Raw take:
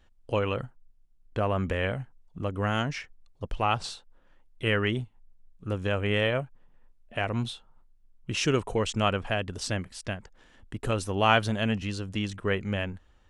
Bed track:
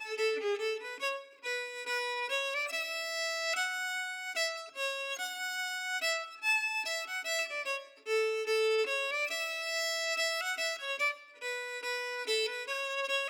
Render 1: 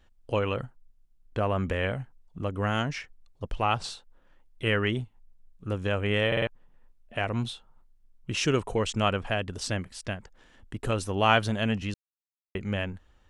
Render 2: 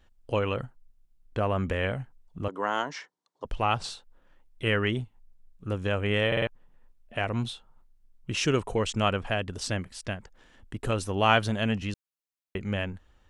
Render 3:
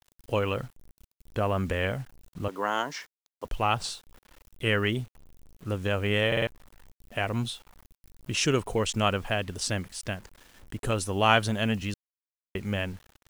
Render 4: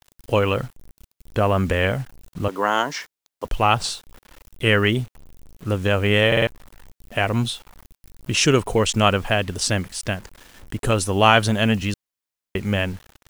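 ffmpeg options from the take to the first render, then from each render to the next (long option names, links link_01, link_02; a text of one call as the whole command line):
ffmpeg -i in.wav -filter_complex "[0:a]asplit=7[link_01][link_02][link_03][link_04][link_05][link_06][link_07];[link_01]atrim=end=6.322[link_08];[link_02]atrim=start=6.268:end=6.322[link_09];[link_03]atrim=start=6.268:end=6.322[link_10];[link_04]atrim=start=6.268:end=6.322[link_11];[link_05]atrim=start=6.468:end=11.94,asetpts=PTS-STARTPTS,afade=type=out:start_time=5.468:duration=0.004:curve=hsin[link_12];[link_06]atrim=start=11.94:end=12.55,asetpts=PTS-STARTPTS,volume=0[link_13];[link_07]atrim=start=12.55,asetpts=PTS-STARTPTS,afade=type=in:duration=0.004:curve=hsin[link_14];[link_08][link_09]acrossfade=duration=0.004:curve1=hsin:curve2=hsin[link_15];[link_15][link_10]acrossfade=duration=0.004:curve1=hsin:curve2=hsin[link_16];[link_16][link_11]acrossfade=duration=0.004:curve1=hsin:curve2=hsin[link_17];[link_12][link_13][link_14]concat=n=3:v=0:a=1[link_18];[link_17][link_18]acrossfade=duration=0.004:curve1=hsin:curve2=hsin" out.wav
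ffmpeg -i in.wav -filter_complex "[0:a]asettb=1/sr,asplit=3[link_01][link_02][link_03];[link_01]atrim=end=2.484[link_04];[link_02]atrim=start=2.48:end=3.45,asetpts=PTS-STARTPTS,afade=type=in:duration=0.004:curve=qsin,afade=type=out:start_time=0.966:duration=0.004:curve=qsin,highpass=frequency=220:width=0.5412,highpass=frequency=220:width=1.3066,equalizer=frequency=230:width_type=q:width=4:gain=-9,equalizer=frequency=970:width_type=q:width=4:gain=9,equalizer=frequency=2500:width_type=q:width=4:gain=-10,lowpass=frequency=8100:width=0.5412,lowpass=frequency=8100:width=1.3066[link_05];[link_03]atrim=start=3.446[link_06];[link_04][link_05]acrossfade=duration=0.004:curve1=hsin:curve2=qsin[link_07];[link_07][link_06]acrossfade=duration=0.004:curve1=qsin:curve2=hsin" out.wav
ffmpeg -i in.wav -af "crystalizer=i=1:c=0,acrusher=bits=8:mix=0:aa=0.000001" out.wav
ffmpeg -i in.wav -af "volume=8dB,alimiter=limit=-1dB:level=0:latency=1" out.wav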